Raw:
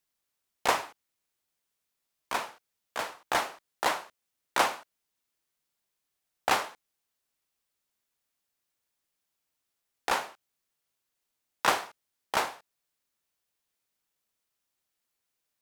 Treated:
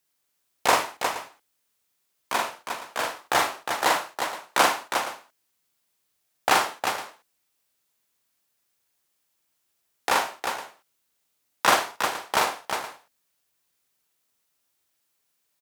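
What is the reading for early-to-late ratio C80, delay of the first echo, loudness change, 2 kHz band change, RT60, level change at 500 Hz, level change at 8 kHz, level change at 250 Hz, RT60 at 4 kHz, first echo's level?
no reverb audible, 44 ms, +5.5 dB, +7.0 dB, no reverb audible, +6.5 dB, +8.5 dB, +7.0 dB, no reverb audible, −3.0 dB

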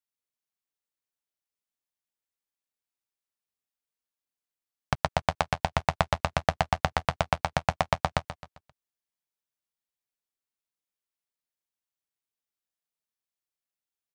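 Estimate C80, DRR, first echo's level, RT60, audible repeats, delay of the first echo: no reverb audible, no reverb audible, −11.5 dB, no reverb audible, 3, 132 ms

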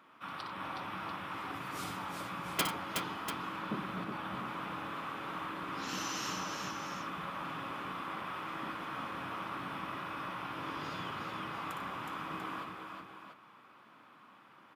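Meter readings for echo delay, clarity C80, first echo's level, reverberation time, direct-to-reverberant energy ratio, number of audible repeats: 60 ms, no reverb audible, −7.5 dB, no reverb audible, no reverb audible, 4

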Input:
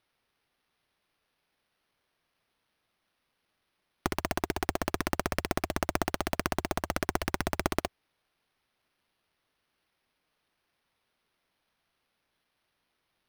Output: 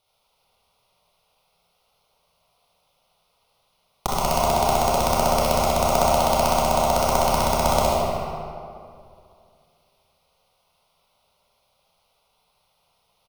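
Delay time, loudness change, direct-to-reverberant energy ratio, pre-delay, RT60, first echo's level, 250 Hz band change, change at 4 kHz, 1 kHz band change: 76 ms, +11.5 dB, −6.5 dB, 23 ms, 2.4 s, −4.5 dB, +5.5 dB, +11.5 dB, +15.5 dB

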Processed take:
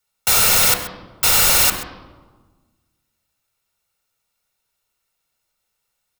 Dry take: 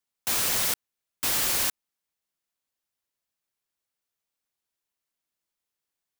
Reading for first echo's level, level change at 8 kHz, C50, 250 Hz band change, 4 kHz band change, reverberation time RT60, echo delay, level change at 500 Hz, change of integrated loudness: −14.5 dB, +11.0 dB, 8.5 dB, +9.0 dB, +11.5 dB, 1.4 s, 131 ms, +12.0 dB, +11.0 dB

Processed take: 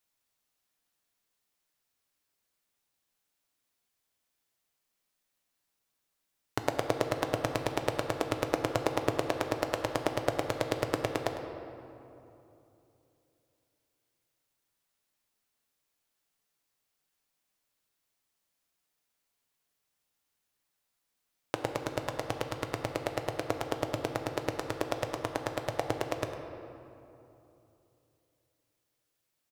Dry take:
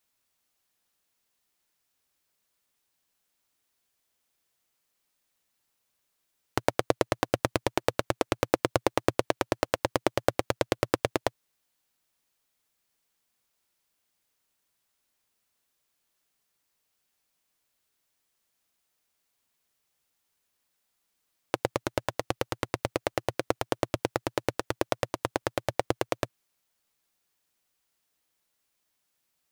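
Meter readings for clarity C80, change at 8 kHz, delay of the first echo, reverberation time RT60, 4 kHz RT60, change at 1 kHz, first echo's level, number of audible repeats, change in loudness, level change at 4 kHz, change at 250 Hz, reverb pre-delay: 6.5 dB, −4.0 dB, 103 ms, 2.9 s, 1.5 s, −3.0 dB, −14.0 dB, 1, −3.0 dB, −3.5 dB, −2.5 dB, 6 ms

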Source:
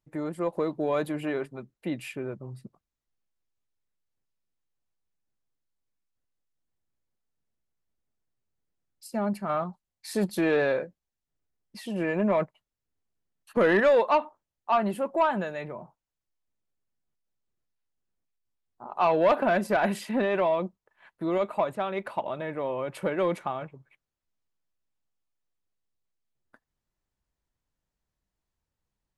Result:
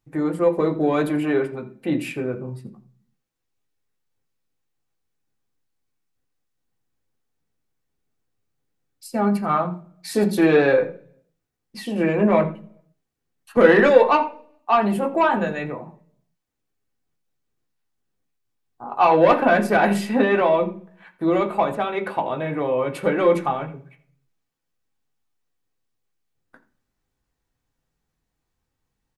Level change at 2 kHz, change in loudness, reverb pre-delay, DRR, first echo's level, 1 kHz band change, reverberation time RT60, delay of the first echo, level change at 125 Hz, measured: +7.5 dB, +7.5 dB, 3 ms, 2.0 dB, −18.0 dB, +7.5 dB, 0.45 s, 84 ms, +8.0 dB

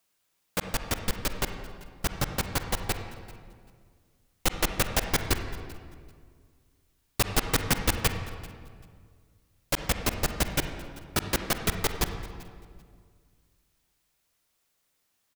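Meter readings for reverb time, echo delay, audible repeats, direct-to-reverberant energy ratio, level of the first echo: 2.0 s, 389 ms, 1, 6.5 dB, −21.5 dB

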